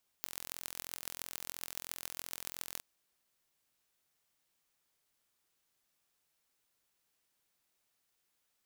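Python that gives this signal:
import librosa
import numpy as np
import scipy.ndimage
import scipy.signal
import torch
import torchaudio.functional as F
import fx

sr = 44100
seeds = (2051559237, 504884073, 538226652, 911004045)

y = fx.impulse_train(sr, length_s=2.58, per_s=43.0, accent_every=6, level_db=-10.5)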